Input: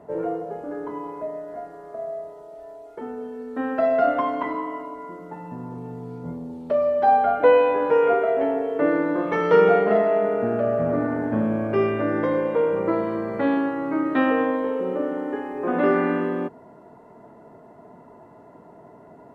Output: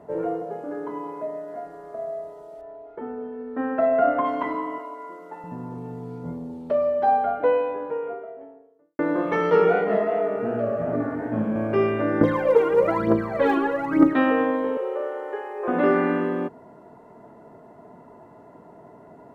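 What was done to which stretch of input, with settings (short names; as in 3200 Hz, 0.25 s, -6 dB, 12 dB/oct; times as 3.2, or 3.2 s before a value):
0.42–1.66 HPF 120 Hz
2.61–4.25 LPF 2100 Hz
4.78–5.44 HPF 400 Hz
6.24–8.99 studio fade out
9.5–11.56 chorus 2.7 Hz, delay 16.5 ms, depth 6.9 ms
12.21–14.13 phaser 1.1 Hz, delay 2.9 ms, feedback 77%
14.77–15.68 elliptic high-pass 380 Hz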